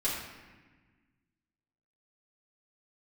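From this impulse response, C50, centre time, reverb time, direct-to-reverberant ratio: 1.0 dB, 67 ms, 1.3 s, -9.5 dB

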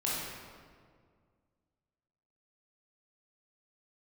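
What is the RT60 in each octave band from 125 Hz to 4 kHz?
2.4 s, 2.3 s, 2.1 s, 1.8 s, 1.5 s, 1.2 s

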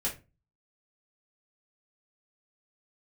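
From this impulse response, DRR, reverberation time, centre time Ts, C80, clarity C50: -5.5 dB, 0.30 s, 19 ms, 19.0 dB, 10.5 dB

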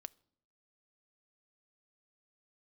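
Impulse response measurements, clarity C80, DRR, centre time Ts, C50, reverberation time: 29.5 dB, 16.0 dB, 1 ms, 26.0 dB, 0.65 s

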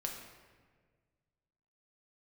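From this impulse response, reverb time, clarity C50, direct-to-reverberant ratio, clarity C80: 1.6 s, 4.5 dB, 0.5 dB, 6.0 dB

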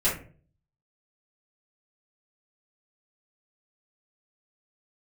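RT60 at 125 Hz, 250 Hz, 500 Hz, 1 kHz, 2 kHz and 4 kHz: 0.70 s, 0.55 s, 0.50 s, 0.35 s, 0.35 s, 0.25 s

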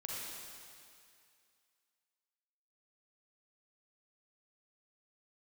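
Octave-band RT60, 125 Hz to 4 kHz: 2.2 s, 2.2 s, 2.3 s, 2.4 s, 2.4 s, 2.4 s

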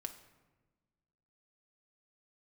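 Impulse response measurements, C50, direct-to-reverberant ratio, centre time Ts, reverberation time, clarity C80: 11.5 dB, 5.5 dB, 11 ms, 1.3 s, 13.5 dB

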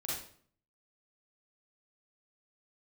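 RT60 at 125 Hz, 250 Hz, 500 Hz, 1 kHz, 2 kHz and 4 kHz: 0.75 s, 0.65 s, 0.55 s, 0.50 s, 0.45 s, 0.45 s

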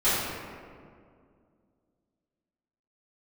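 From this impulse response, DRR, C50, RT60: -16.5 dB, -2.5 dB, 2.2 s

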